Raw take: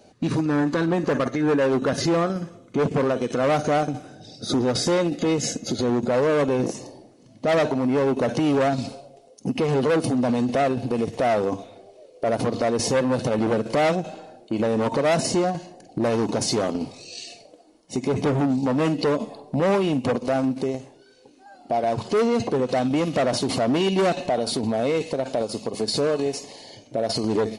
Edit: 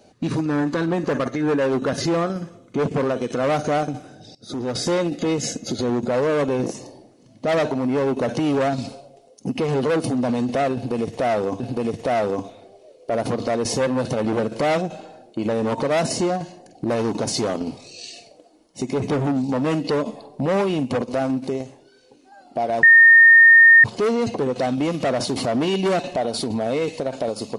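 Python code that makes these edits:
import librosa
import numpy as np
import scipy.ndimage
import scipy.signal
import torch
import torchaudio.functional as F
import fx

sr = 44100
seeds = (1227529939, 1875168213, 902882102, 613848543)

y = fx.edit(x, sr, fx.fade_in_from(start_s=4.35, length_s=0.55, floor_db=-18.0),
    fx.repeat(start_s=10.74, length_s=0.86, count=2),
    fx.insert_tone(at_s=21.97, length_s=1.01, hz=1830.0, db=-6.5), tone=tone)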